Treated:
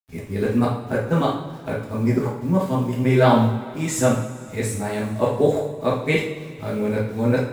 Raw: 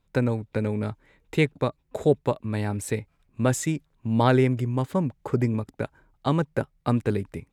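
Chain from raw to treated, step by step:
played backwards from end to start
bit reduction 9 bits
coupled-rooms reverb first 0.57 s, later 3 s, from −18 dB, DRR −5 dB
level −1 dB

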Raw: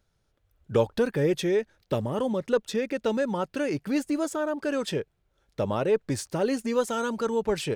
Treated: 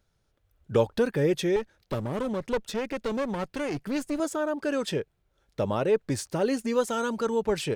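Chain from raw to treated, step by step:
0:01.56–0:04.20: asymmetric clip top −33.5 dBFS

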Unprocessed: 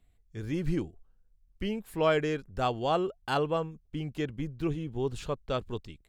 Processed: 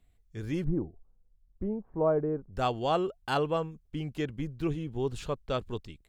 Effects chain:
0:00.64–0:02.53: low-pass filter 1,000 Hz 24 dB per octave

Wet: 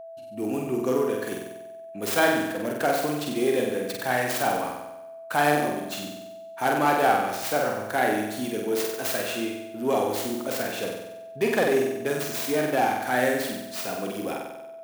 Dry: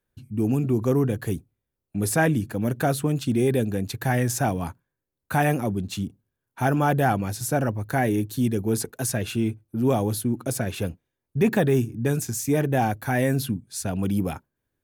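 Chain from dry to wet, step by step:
stylus tracing distortion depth 0.28 ms
high-pass filter 400 Hz 12 dB per octave
on a send: flutter between parallel walls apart 8.1 metres, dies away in 0.94 s
on the sum: steady tone 660 Hz −39 dBFS

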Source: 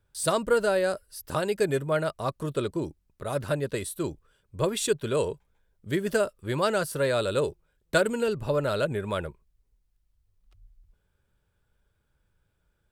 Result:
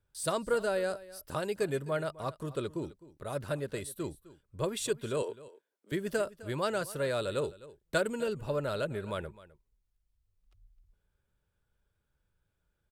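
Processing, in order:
0:05.22–0:05.92: Butterworth high-pass 270 Hz 36 dB per octave
single-tap delay 258 ms −18.5 dB
level −6.5 dB

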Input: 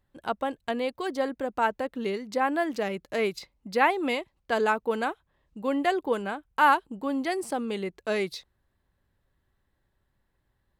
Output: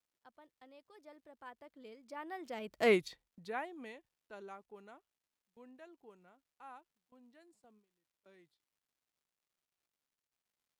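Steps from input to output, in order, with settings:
source passing by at 0:02.89, 35 m/s, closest 2.7 metres
noise gate with hold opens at −56 dBFS
surface crackle 350 per second −74 dBFS

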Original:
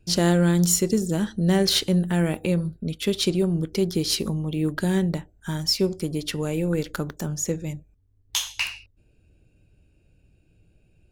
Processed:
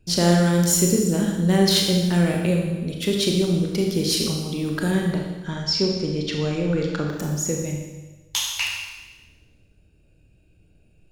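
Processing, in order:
0:04.91–0:07.06: low-pass filter 5,900 Hz 24 dB per octave
four-comb reverb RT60 1.2 s, combs from 27 ms, DRR 0.5 dB

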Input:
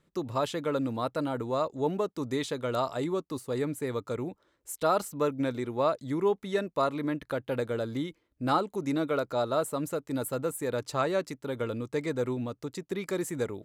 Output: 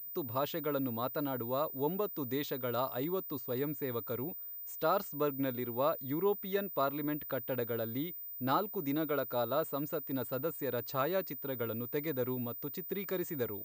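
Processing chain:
switching amplifier with a slow clock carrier 15,000 Hz
level −5 dB

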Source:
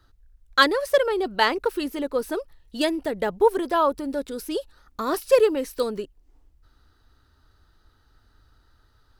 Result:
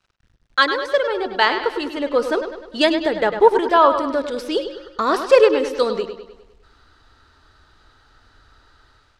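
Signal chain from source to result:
low-shelf EQ 380 Hz −10.5 dB
hum removal 178.2 Hz, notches 7
automatic gain control gain up to 12 dB
bit reduction 10 bits
high-frequency loss of the air 100 metres
bucket-brigade delay 101 ms, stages 4,096, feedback 50%, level −9 dB
level +1 dB

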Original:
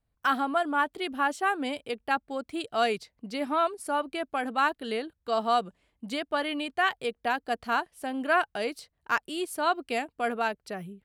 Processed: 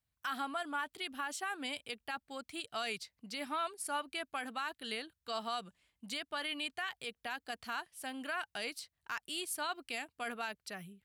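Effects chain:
high-pass filter 61 Hz
guitar amp tone stack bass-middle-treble 5-5-5
brickwall limiter −35 dBFS, peak gain reduction 11 dB
level +7 dB

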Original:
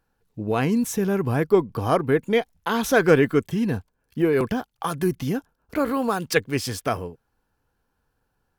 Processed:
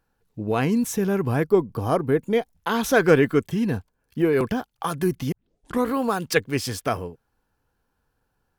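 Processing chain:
0:01.44–0:02.55: parametric band 2,400 Hz −5.5 dB 2.5 octaves
0:05.32: tape start 0.56 s

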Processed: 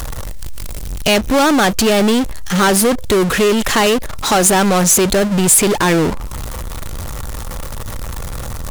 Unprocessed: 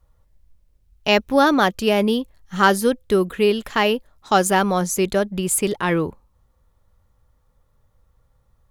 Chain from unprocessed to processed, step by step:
gain on one half-wave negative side −3 dB
power curve on the samples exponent 0.35
downward compressor 1.5 to 1, threshold −16 dBFS, peak gain reduction 3.5 dB
parametric band 8,100 Hz +4.5 dB 1.5 octaves
one half of a high-frequency compander encoder only

